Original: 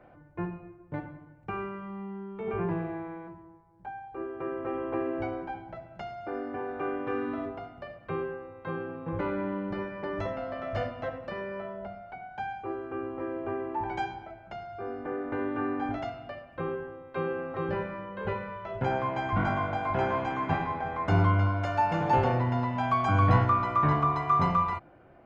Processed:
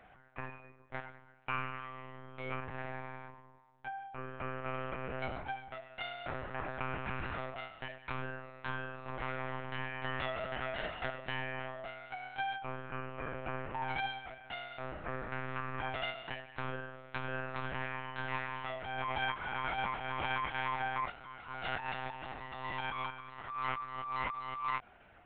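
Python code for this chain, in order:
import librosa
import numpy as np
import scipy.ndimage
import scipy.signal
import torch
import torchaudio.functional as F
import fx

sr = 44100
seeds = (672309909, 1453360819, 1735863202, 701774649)

y = fx.over_compress(x, sr, threshold_db=-32.0, ratio=-1.0)
y = np.diff(y, prepend=0.0)
y = fx.lpc_monotone(y, sr, seeds[0], pitch_hz=130.0, order=10)
y = F.gain(torch.from_numpy(y), 13.5).numpy()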